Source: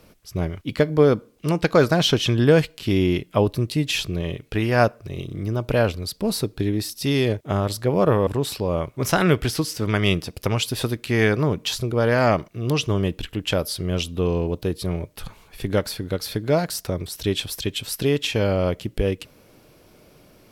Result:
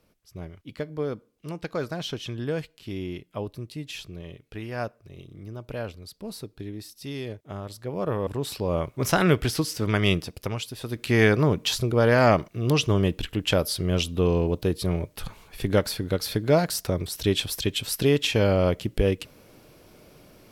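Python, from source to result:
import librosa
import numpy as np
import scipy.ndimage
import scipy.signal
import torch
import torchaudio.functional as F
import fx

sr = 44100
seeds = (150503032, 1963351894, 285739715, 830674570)

y = fx.gain(x, sr, db=fx.line((7.72, -13.5), (8.75, -2.0), (10.16, -2.0), (10.81, -12.5), (11.02, 0.0)))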